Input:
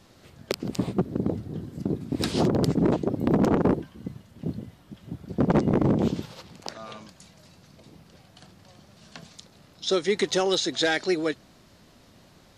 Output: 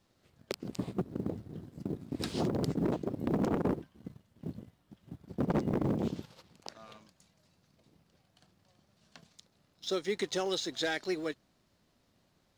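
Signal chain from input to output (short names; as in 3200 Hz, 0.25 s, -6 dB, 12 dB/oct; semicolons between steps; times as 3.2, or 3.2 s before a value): G.711 law mismatch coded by A; gain -8.5 dB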